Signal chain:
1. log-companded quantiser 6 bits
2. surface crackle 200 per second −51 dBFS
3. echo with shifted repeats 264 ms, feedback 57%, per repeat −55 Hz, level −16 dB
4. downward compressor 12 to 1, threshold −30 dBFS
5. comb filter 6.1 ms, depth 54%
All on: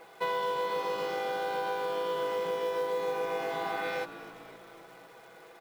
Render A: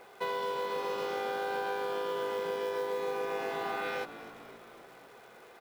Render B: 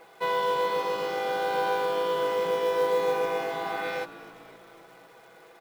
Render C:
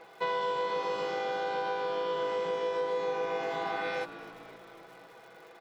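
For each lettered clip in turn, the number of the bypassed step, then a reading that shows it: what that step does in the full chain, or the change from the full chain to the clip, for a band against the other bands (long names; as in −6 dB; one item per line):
5, change in integrated loudness −2.0 LU
4, average gain reduction 3.0 dB
1, distortion level −25 dB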